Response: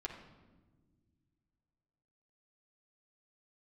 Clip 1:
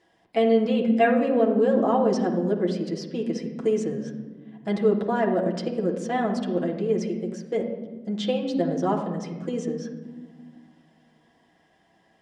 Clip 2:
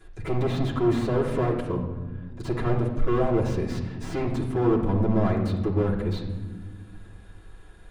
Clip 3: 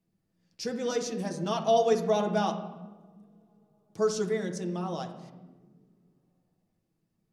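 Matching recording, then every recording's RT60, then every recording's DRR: 1; not exponential, not exponential, not exponential; -3.5, -10.0, 1.0 dB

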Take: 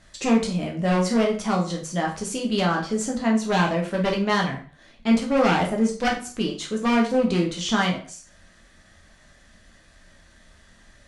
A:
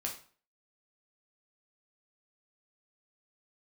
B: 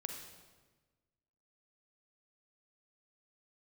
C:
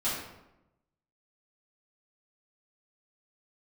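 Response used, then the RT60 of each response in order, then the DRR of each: A; 0.45, 1.3, 0.90 s; -1.0, 3.5, -12.0 dB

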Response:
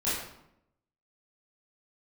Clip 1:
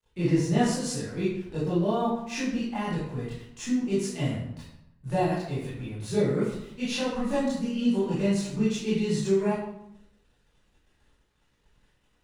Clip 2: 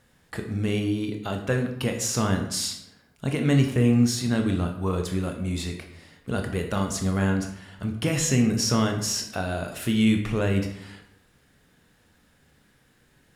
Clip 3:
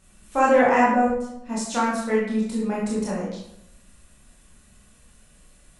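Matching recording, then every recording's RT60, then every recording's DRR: 1; 0.80, 0.80, 0.80 s; -12.0, 3.5, -6.5 dB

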